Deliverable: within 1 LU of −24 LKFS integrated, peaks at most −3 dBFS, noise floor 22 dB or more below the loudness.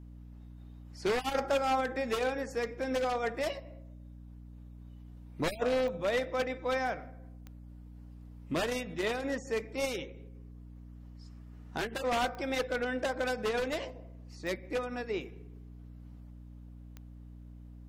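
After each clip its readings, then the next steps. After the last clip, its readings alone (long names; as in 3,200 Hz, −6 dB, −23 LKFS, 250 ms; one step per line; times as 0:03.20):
number of clicks 5; mains hum 60 Hz; hum harmonics up to 300 Hz; level of the hum −46 dBFS; integrated loudness −33.5 LKFS; sample peak −20.0 dBFS; target loudness −24.0 LKFS
→ click removal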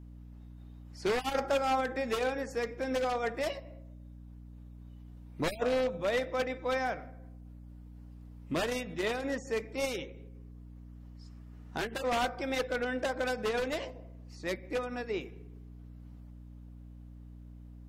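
number of clicks 0; mains hum 60 Hz; hum harmonics up to 300 Hz; level of the hum −46 dBFS
→ hum removal 60 Hz, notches 5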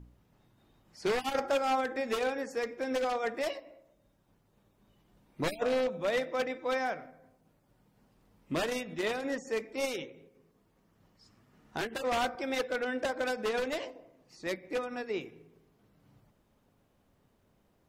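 mains hum none found; integrated loudness −33.5 LKFS; sample peak −20.0 dBFS; target loudness −24.0 LKFS
→ level +9.5 dB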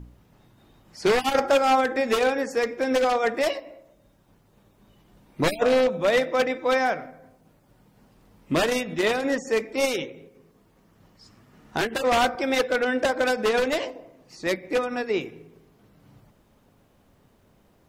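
integrated loudness −24.0 LKFS; sample peak −10.5 dBFS; background noise floor −61 dBFS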